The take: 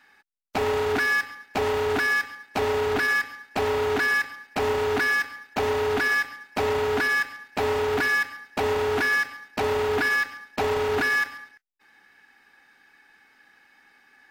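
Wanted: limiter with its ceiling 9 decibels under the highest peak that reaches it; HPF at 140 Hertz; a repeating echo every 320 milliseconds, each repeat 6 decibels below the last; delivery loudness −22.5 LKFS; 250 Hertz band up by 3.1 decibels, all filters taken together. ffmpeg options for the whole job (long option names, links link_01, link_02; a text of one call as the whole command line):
ffmpeg -i in.wav -af "highpass=140,equalizer=frequency=250:width_type=o:gain=4,alimiter=limit=-22dB:level=0:latency=1,aecho=1:1:320|640|960|1280|1600|1920:0.501|0.251|0.125|0.0626|0.0313|0.0157,volume=6dB" out.wav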